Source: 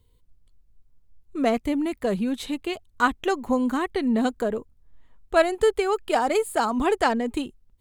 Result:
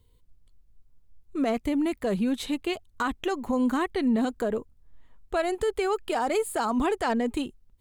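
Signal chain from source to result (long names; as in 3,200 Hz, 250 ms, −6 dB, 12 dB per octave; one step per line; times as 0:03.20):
brickwall limiter −18 dBFS, peak gain reduction 10.5 dB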